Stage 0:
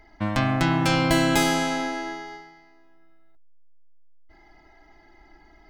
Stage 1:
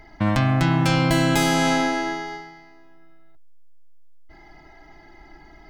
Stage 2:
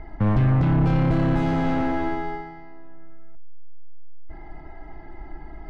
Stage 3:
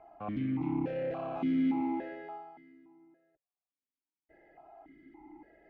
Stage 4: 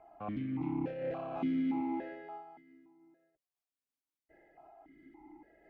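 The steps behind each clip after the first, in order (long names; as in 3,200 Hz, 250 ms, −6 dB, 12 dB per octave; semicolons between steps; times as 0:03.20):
parametric band 140 Hz +6.5 dB 0.58 octaves; in parallel at +1 dB: compressor whose output falls as the input rises −25 dBFS, ratio −1; on the sum: level −3 dB
hard clipping −21.5 dBFS, distortion −8 dB; mid-hump overdrive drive 12 dB, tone 1,100 Hz, clips at −21.5 dBFS; RIAA equalisation playback
formant filter that steps through the vowels 3.5 Hz
amplitude modulation by smooth noise, depth 55%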